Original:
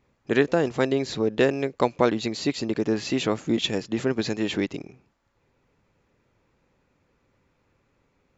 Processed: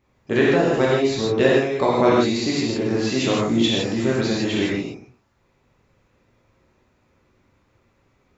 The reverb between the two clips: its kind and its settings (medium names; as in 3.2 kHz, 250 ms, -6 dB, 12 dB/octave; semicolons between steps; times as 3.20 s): gated-style reverb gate 190 ms flat, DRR -6 dB; trim -1.5 dB